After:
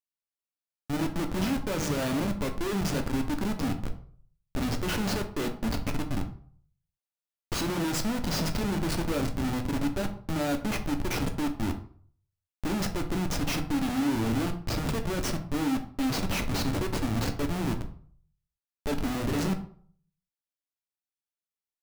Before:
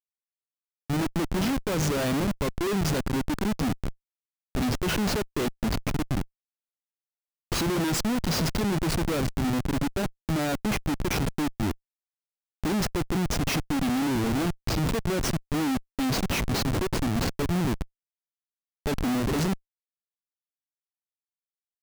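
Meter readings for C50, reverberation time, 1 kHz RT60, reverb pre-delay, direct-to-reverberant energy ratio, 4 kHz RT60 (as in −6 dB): 11.5 dB, 0.50 s, 0.50 s, 3 ms, 4.5 dB, 0.35 s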